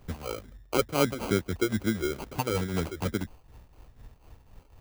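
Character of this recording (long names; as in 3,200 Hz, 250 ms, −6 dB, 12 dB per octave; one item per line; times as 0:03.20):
phaser sweep stages 6, 2.3 Hz, lowest notch 180–1,900 Hz
tremolo triangle 4 Hz, depth 75%
aliases and images of a low sample rate 1,800 Hz, jitter 0%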